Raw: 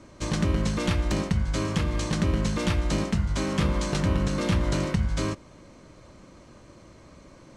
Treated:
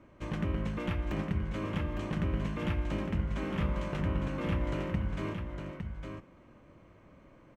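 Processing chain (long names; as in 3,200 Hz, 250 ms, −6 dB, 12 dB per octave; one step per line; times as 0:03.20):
flat-topped bell 6,300 Hz −15.5 dB
on a send: single-tap delay 858 ms −6.5 dB
on the sum: level −8 dB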